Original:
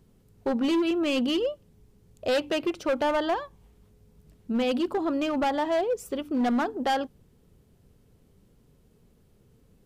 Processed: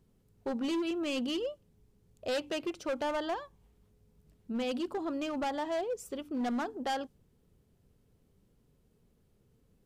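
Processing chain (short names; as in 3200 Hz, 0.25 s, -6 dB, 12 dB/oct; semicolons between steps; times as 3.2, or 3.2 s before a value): dynamic EQ 7100 Hz, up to +5 dB, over -51 dBFS, Q 0.87; gain -8 dB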